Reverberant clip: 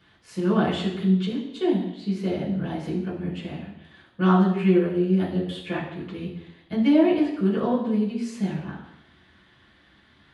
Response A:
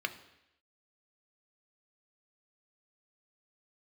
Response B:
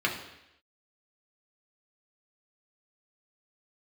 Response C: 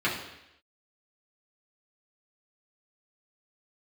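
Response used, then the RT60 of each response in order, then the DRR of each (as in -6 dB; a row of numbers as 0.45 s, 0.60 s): C; 0.85 s, 0.85 s, 0.85 s; 7.5 dB, -2.0 dB, -7.5 dB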